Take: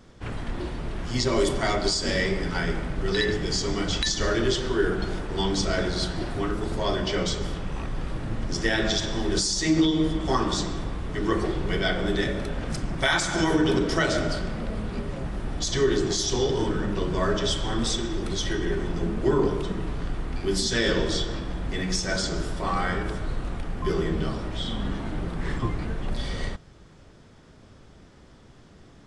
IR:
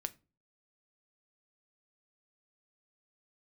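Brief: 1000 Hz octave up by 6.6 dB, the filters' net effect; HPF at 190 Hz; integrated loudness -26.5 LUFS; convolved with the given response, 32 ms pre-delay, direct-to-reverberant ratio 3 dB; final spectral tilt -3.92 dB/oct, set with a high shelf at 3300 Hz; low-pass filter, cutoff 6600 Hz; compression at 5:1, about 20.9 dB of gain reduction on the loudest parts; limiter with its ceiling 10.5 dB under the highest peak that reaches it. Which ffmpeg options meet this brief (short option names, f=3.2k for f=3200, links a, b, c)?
-filter_complex "[0:a]highpass=190,lowpass=6.6k,equalizer=f=1k:t=o:g=8,highshelf=f=3.3k:g=3,acompressor=threshold=-39dB:ratio=5,alimiter=level_in=8.5dB:limit=-24dB:level=0:latency=1,volume=-8.5dB,asplit=2[a][b];[1:a]atrim=start_sample=2205,adelay=32[c];[b][c]afir=irnorm=-1:irlink=0,volume=-1.5dB[d];[a][d]amix=inputs=2:normalize=0,volume=13.5dB"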